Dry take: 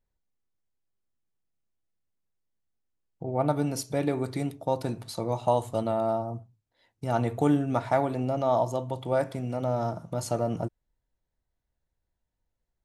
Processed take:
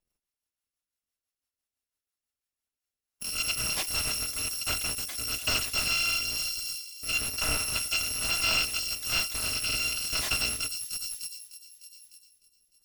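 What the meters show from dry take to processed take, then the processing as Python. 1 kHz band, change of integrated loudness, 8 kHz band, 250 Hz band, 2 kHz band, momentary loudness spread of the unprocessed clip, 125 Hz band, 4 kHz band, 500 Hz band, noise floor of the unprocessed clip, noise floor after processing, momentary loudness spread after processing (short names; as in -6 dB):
-10.0 dB, +1.0 dB, +15.0 dB, -17.0 dB, +13.5 dB, 8 LU, -12.5 dB, +19.5 dB, -18.0 dB, -82 dBFS, under -85 dBFS, 9 LU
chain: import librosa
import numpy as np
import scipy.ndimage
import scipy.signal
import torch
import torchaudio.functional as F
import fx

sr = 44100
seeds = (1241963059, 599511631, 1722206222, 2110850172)

y = fx.bit_reversed(x, sr, seeds[0], block=256)
y = fx.rider(y, sr, range_db=10, speed_s=2.0)
y = fx.echo_wet_highpass(y, sr, ms=302, feedback_pct=54, hz=3600.0, wet_db=-8.0)
y = fx.dynamic_eq(y, sr, hz=2700.0, q=1.3, threshold_db=-41.0, ratio=4.0, max_db=4)
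y = fx.cheby_harmonics(y, sr, harmonics=(5,), levels_db=(-22,), full_scale_db=-10.5)
y = fx.low_shelf(y, sr, hz=200.0, db=-10.5)
y = fx.rotary_switch(y, sr, hz=6.0, then_hz=1.1, switch_at_s=2.46)
y = fx.slew_limit(y, sr, full_power_hz=190.0)
y = y * librosa.db_to_amplitude(3.0)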